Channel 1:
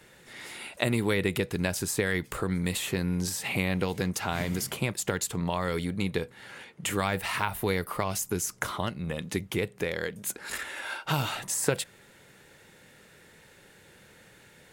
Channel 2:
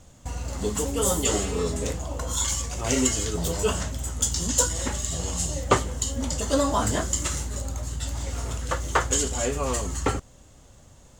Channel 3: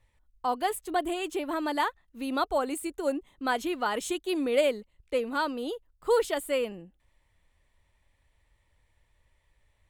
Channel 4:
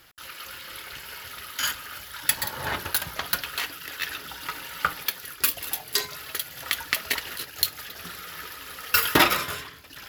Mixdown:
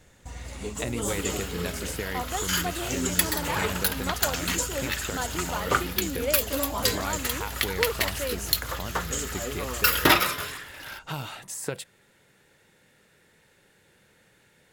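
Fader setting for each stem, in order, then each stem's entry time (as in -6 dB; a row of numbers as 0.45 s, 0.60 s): -6.0 dB, -7.5 dB, -5.0 dB, -0.5 dB; 0.00 s, 0.00 s, 1.70 s, 0.90 s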